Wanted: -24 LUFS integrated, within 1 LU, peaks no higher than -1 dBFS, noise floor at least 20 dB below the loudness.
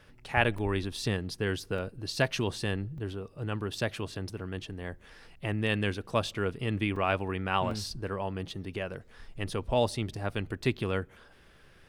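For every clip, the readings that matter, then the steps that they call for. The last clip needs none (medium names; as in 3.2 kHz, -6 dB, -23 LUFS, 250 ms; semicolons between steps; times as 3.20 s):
dropouts 6; longest dropout 3.4 ms; loudness -32.5 LUFS; peak level -8.5 dBFS; loudness target -24.0 LUFS
-> interpolate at 0.58/1.78/2.98/3.78/6.96/7.71 s, 3.4 ms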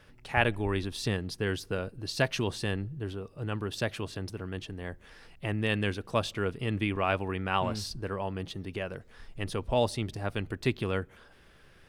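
dropouts 0; loudness -32.5 LUFS; peak level -8.5 dBFS; loudness target -24.0 LUFS
-> trim +8.5 dB; peak limiter -1 dBFS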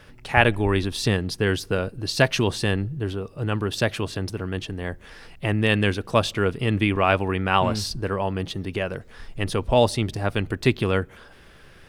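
loudness -24.0 LUFS; peak level -1.0 dBFS; noise floor -49 dBFS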